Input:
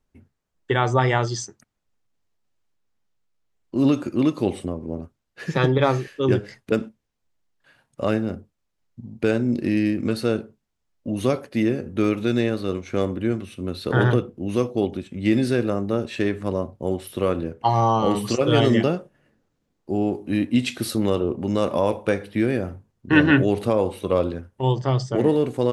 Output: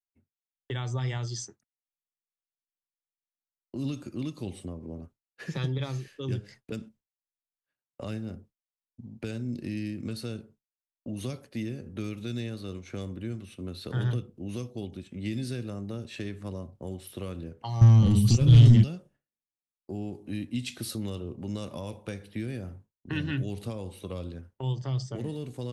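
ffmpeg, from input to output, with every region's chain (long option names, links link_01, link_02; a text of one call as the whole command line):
ffmpeg -i in.wav -filter_complex "[0:a]asettb=1/sr,asplit=3[link_01][link_02][link_03];[link_01]atrim=end=17.814[link_04];[link_02]atrim=start=17.81:end=18.84,asetpts=PTS-STARTPTS,afade=type=in:duration=0.004:curve=qsin,afade=type=out:start_time=1.026:duration=0.004:curve=qsin,equalizer=frequency=94:width=0.39:gain=15,acontrast=83[link_05];[link_03]atrim=start=18.836[link_06];[link_04][link_05]acrossfade=duration=0.004:curve1=hsin:curve2=qsin[link_07];[link_07][link_06]acrossfade=duration=0.004:curve1=qsin:curve2=hsin,agate=range=-33dB:threshold=-39dB:ratio=3:detection=peak,acrossover=split=190|3000[link_08][link_09][link_10];[link_09]acompressor=threshold=-33dB:ratio=6[link_11];[link_08][link_11][link_10]amix=inputs=3:normalize=0,volume=-6dB" out.wav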